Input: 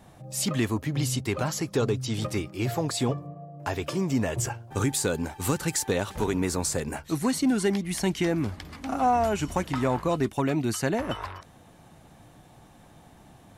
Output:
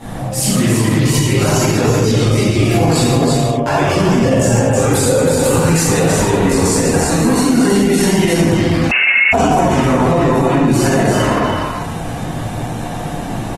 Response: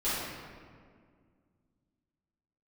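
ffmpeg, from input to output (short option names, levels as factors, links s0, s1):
-filter_complex "[0:a]asettb=1/sr,asplit=3[s0][s1][s2];[s0]atrim=end=0.814[s3];[s1]atrim=start=0.81:end=1.36,asetpts=PTS-STARTPTS,afade=t=in:d=0.004:c=qsin,afade=t=out:st=0.546:d=0.004:c=qsin,aecho=1:1:2.1:0.46,atrim=end_sample=24255[s4];[s2]atrim=start=1.356[s5];[s3][s4]acrossfade=d=0.004:c1=hsin:c2=qsin[s6];[s6][s5]acrossfade=d=0.004:c1=qsin:c2=hsin,asettb=1/sr,asplit=3[s7][s8][s9];[s7]atrim=end=4.224[s10];[s8]atrim=start=4.22:end=5.32,asetpts=PTS-STARTPTS,afade=t=in:d=0.004:c=qsin,afade=t=out:st=1.096:d=0.004:c=qsin,equalizer=f=530:t=o:w=0.29:g=14[s11];[s9]atrim=start=5.316[s12];[s10][s11]acrossfade=d=0.004:c1=hsin:c2=qsin[s13];[s13][s12]acrossfade=d=0.004:c1=qsin:c2=hsin,acompressor=threshold=0.00355:ratio=2,aecho=1:1:327:0.596[s14];[1:a]atrim=start_sample=2205,atrim=end_sample=6615,asetrate=25137,aresample=44100[s15];[s14][s15]afir=irnorm=-1:irlink=0,asettb=1/sr,asplit=3[s16][s17][s18];[s16]atrim=end=8.914[s19];[s17]atrim=start=8.91:end=9.33,asetpts=PTS-STARTPTS,afade=t=in:d=0.004:c=qsin,afade=t=out:st=0.416:d=0.004:c=qsin,lowpass=f=2500:t=q:w=0.5098,lowpass=f=2500:t=q:w=0.6013,lowpass=f=2500:t=q:w=0.9,lowpass=f=2500:t=q:w=2.563,afreqshift=-2900[s20];[s18]atrim=start=9.326[s21];[s19][s20]acrossfade=d=0.004:c1=hsin:c2=qsin[s22];[s22][s21]acrossfade=d=0.004:c1=qsin:c2=hsin,alimiter=level_in=9.44:limit=0.891:release=50:level=0:latency=1,volume=0.708" -ar 48000 -c:a libopus -b:a 20k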